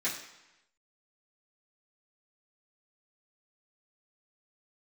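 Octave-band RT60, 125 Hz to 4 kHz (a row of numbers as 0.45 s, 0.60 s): 0.95 s, 0.90 s, 0.90 s, 1.0 s, 1.0 s, 0.95 s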